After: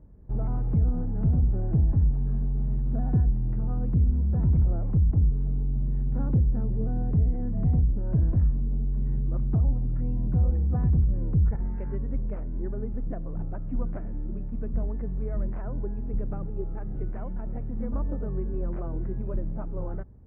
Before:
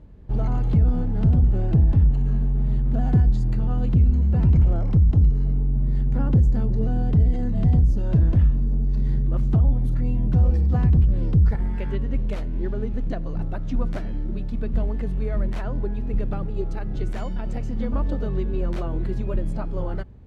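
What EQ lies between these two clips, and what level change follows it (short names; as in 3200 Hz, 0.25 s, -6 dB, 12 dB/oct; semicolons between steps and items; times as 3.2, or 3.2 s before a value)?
Bessel low-pass 1300 Hz, order 8; air absorption 250 m; -5.0 dB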